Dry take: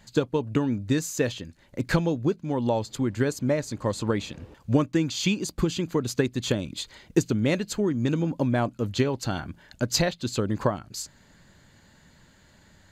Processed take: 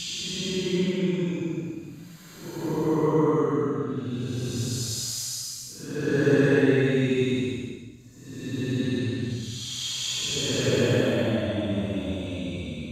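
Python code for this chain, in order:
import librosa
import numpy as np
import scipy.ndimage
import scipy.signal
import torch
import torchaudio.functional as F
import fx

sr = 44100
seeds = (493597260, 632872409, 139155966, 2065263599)

y = fx.paulstretch(x, sr, seeds[0], factor=14.0, window_s=0.1, from_s=5.74)
y = fx.echo_thinned(y, sr, ms=65, feedback_pct=66, hz=560.0, wet_db=-7)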